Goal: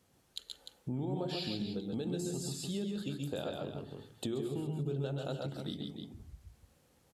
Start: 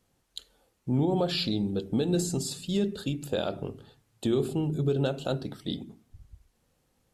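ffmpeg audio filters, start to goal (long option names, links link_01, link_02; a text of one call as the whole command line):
ffmpeg -i in.wav -filter_complex "[0:a]asplit=2[link_01][link_02];[link_02]aecho=0:1:124|138|299:0.422|0.562|0.266[link_03];[link_01][link_03]amix=inputs=2:normalize=0,acompressor=threshold=-42dB:ratio=2.5,highpass=60,volume=1.5dB" out.wav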